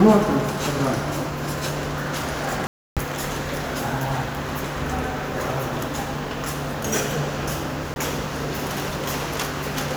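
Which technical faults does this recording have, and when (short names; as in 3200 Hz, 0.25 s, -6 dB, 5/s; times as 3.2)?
2.67–2.97 gap 0.297 s
7.94–7.96 gap 21 ms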